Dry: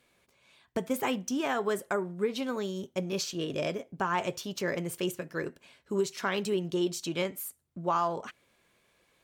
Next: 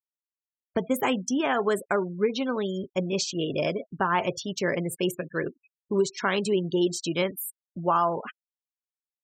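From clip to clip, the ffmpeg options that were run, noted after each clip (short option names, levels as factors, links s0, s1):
-af "afftfilt=real='re*gte(hypot(re,im),0.01)':imag='im*gte(hypot(re,im),0.01)':win_size=1024:overlap=0.75,volume=1.78"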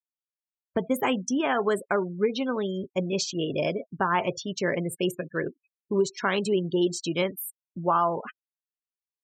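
-af "afftdn=nr=13:nf=-39"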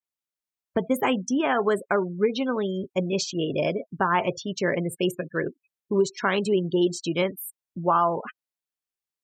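-af "adynamicequalizer=threshold=0.00708:dfrequency=3300:dqfactor=0.7:tfrequency=3300:tqfactor=0.7:attack=5:release=100:ratio=0.375:range=3:mode=cutabove:tftype=highshelf,volume=1.26"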